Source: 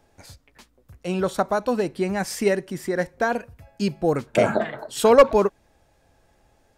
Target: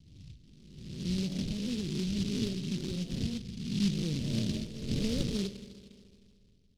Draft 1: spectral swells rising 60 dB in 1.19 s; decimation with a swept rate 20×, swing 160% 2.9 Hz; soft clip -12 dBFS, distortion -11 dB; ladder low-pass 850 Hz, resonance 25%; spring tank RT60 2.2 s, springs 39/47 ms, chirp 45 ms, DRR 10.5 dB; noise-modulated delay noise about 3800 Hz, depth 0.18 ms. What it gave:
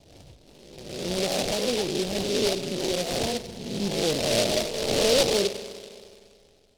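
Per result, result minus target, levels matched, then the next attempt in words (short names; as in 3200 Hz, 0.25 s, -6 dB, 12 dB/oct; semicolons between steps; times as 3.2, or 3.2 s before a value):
1000 Hz band +16.0 dB; soft clip: distortion +7 dB
spectral swells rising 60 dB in 1.19 s; decimation with a swept rate 20×, swing 160% 2.9 Hz; soft clip -12 dBFS, distortion -11 dB; ladder low-pass 260 Hz, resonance 25%; spring tank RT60 2.2 s, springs 39/47 ms, chirp 45 ms, DRR 10.5 dB; noise-modulated delay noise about 3800 Hz, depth 0.18 ms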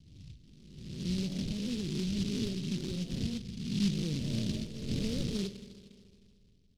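soft clip: distortion +7 dB
spectral swells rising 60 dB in 1.19 s; decimation with a swept rate 20×, swing 160% 2.9 Hz; soft clip -5.5 dBFS, distortion -18 dB; ladder low-pass 260 Hz, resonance 25%; spring tank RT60 2.2 s, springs 39/47 ms, chirp 45 ms, DRR 10.5 dB; noise-modulated delay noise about 3800 Hz, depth 0.18 ms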